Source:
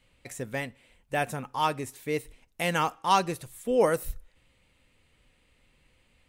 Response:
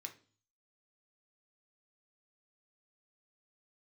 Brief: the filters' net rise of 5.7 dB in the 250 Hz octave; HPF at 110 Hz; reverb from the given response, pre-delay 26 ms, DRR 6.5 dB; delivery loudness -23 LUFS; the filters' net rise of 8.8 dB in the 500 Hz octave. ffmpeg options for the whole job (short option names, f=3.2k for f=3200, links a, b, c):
-filter_complex "[0:a]highpass=110,equalizer=f=250:t=o:g=5,equalizer=f=500:t=o:g=8.5,asplit=2[a][b];[1:a]atrim=start_sample=2205,adelay=26[c];[b][c]afir=irnorm=-1:irlink=0,volume=-2.5dB[d];[a][d]amix=inputs=2:normalize=0,volume=-0.5dB"